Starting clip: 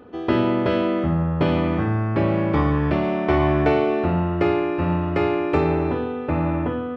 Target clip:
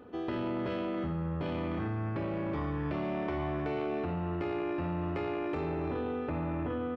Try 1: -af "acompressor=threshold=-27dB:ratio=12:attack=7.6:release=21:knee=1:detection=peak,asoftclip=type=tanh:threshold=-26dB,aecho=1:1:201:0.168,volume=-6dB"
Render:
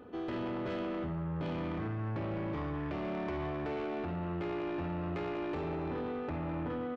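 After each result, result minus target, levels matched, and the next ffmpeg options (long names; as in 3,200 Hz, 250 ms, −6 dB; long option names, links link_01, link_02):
soft clipping: distortion +14 dB; echo 106 ms early
-af "acompressor=threshold=-27dB:ratio=12:attack=7.6:release=21:knee=1:detection=peak,asoftclip=type=tanh:threshold=-16dB,aecho=1:1:201:0.168,volume=-6dB"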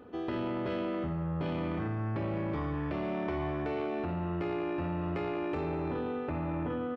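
echo 106 ms early
-af "acompressor=threshold=-27dB:ratio=12:attack=7.6:release=21:knee=1:detection=peak,asoftclip=type=tanh:threshold=-16dB,aecho=1:1:307:0.168,volume=-6dB"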